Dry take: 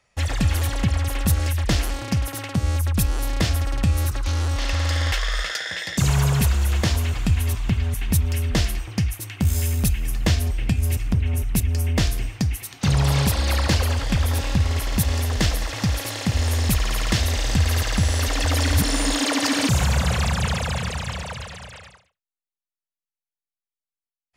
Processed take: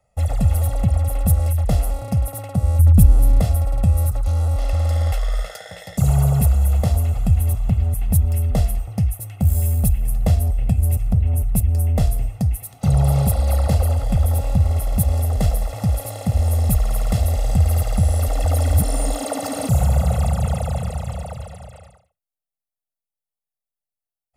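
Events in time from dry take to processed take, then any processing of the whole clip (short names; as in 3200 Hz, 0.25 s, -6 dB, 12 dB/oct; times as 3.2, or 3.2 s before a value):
2.79–3.4 resonant low shelf 420 Hz +7 dB, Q 1.5
whole clip: band shelf 3000 Hz -14 dB 2.7 oct; comb 1.5 ms, depth 73%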